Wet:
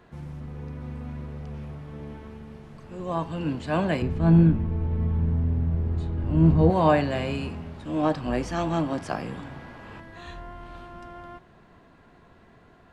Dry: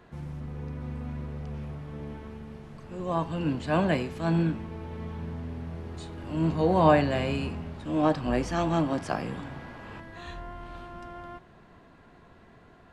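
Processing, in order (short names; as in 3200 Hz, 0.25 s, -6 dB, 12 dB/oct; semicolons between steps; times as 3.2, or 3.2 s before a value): 4.02–6.7 RIAA curve playback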